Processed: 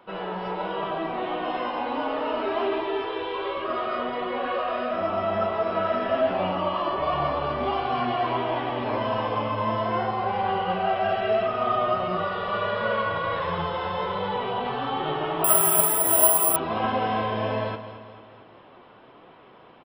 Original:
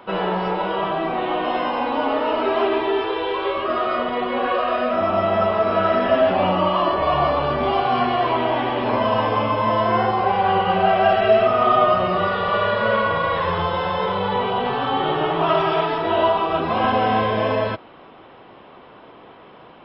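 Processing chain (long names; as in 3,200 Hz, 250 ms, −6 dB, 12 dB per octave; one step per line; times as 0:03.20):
automatic gain control gain up to 3.5 dB
flanger 1.4 Hz, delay 5.4 ms, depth 4.5 ms, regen +70%
on a send: repeating echo 219 ms, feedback 51%, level −12.5 dB
0:15.44–0:16.56: on the sum: bad sample-rate conversion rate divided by 4×, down filtered, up zero stuff
level −5.5 dB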